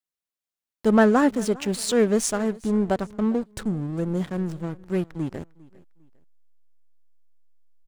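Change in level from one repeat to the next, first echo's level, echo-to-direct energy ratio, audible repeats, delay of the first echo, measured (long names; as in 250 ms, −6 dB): −9.5 dB, −22.5 dB, −22.0 dB, 2, 402 ms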